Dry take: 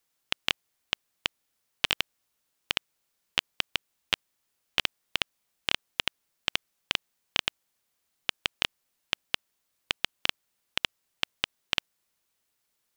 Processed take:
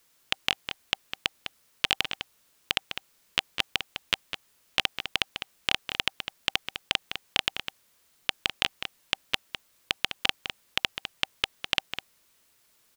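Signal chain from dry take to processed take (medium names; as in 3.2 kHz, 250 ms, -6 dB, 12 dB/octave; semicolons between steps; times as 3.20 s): band-stop 780 Hz, Q 12; in parallel at -2 dB: compressor with a negative ratio -34 dBFS, ratio -0.5; on the sum: echo from a far wall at 35 m, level -8 dB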